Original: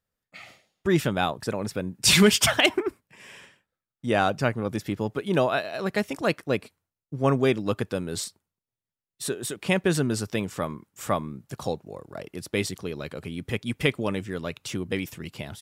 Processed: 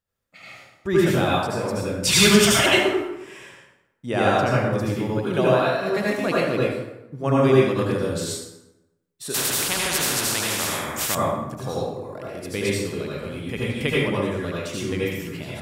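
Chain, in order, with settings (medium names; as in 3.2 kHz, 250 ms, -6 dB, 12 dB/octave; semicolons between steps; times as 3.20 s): reverberation RT60 0.95 s, pre-delay 68 ms, DRR -6.5 dB; 9.34–11.15 s: spectrum-flattening compressor 4:1; trim -3 dB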